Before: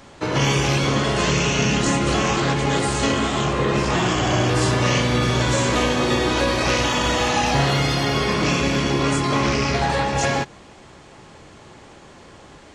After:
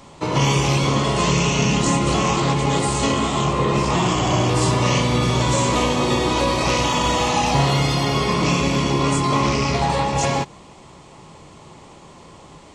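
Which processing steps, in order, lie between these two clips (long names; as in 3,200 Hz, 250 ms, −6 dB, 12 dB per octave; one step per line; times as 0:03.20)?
thirty-one-band graphic EQ 160 Hz +6 dB, 1,000 Hz +6 dB, 1,600 Hz −10 dB, 8,000 Hz +4 dB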